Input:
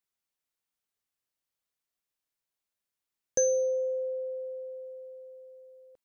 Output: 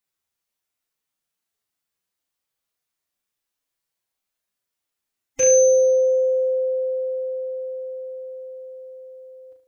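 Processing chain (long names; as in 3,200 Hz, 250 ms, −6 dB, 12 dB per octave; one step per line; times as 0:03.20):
loose part that buzzes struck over −46 dBFS, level −23 dBFS
phase-vocoder stretch with locked phases 1.6×
flutter between parallel walls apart 6.3 metres, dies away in 0.44 s
level +4.5 dB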